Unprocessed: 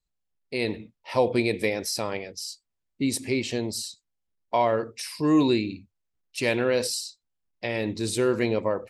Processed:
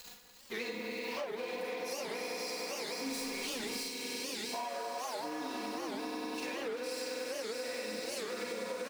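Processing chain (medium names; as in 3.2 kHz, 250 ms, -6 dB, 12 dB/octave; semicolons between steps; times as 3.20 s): jump at every zero crossing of -34 dBFS; peaking EQ 9.1 kHz -6 dB 0.56 oct; on a send: echo with a slow build-up 97 ms, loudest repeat 5, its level -9 dB; on the sum: saturation -20.5 dBFS, distortion -11 dB; high-pass 620 Hz 6 dB/octave; echo whose repeats swap between lows and highs 178 ms, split 2.2 kHz, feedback 59%, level -8 dB; 3.06–3.83 s: waveshaping leveller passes 3; comb 4.1 ms, depth 74%; Schroeder reverb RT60 0.39 s, combs from 33 ms, DRR -2 dB; compression 12:1, threshold -29 dBFS, peak gain reduction 15.5 dB; warped record 78 rpm, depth 250 cents; trim -6.5 dB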